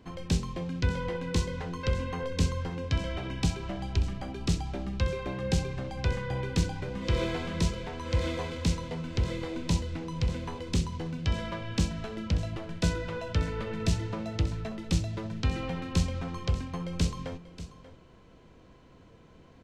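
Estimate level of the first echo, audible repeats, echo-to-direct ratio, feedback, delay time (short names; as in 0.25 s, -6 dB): -14.5 dB, 1, -14.5 dB, no steady repeat, 0.587 s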